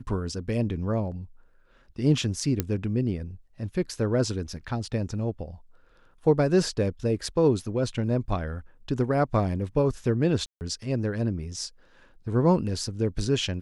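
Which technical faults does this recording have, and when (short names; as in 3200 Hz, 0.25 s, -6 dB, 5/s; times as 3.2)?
2.6 pop -10 dBFS
10.46–10.61 gap 0.149 s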